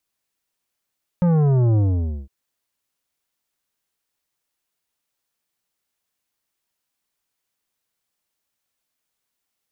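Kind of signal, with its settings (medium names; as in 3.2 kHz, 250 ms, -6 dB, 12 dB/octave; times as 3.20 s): sub drop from 180 Hz, over 1.06 s, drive 11 dB, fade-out 0.51 s, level -15 dB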